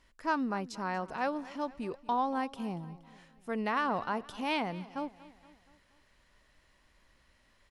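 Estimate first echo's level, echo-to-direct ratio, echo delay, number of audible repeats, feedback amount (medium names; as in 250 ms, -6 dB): -19.0 dB, -17.5 dB, 236 ms, 3, 53%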